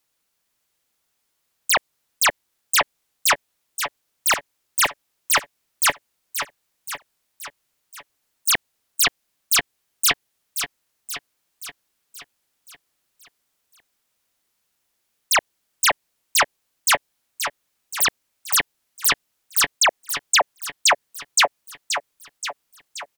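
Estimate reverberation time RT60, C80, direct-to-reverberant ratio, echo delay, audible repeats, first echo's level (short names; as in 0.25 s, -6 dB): none, none, none, 0.527 s, 6, -9.0 dB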